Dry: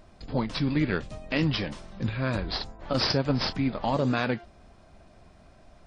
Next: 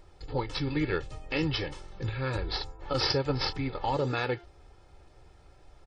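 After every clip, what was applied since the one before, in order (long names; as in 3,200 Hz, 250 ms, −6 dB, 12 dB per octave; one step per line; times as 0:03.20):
comb filter 2.3 ms, depth 83%
level −4 dB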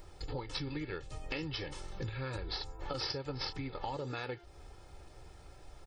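downward compressor 10 to 1, threshold −38 dBFS, peak gain reduction 14.5 dB
high-shelf EQ 7,300 Hz +9.5 dB
level +2 dB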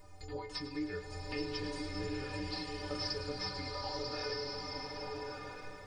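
stiff-string resonator 89 Hz, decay 0.46 s, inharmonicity 0.03
feedback echo with a high-pass in the loop 105 ms, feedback 73%, level −12.5 dB
slow-attack reverb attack 1,300 ms, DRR −0.5 dB
level +9 dB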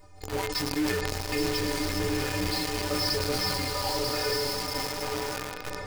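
in parallel at −4.5 dB: log-companded quantiser 2 bits
on the sum: level that may fall only so fast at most 24 dB per second
level +1.5 dB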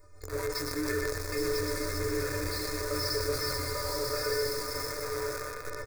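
phaser with its sweep stopped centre 810 Hz, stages 6
on a send: single-tap delay 123 ms −6 dB
on the sum: level −1.5 dB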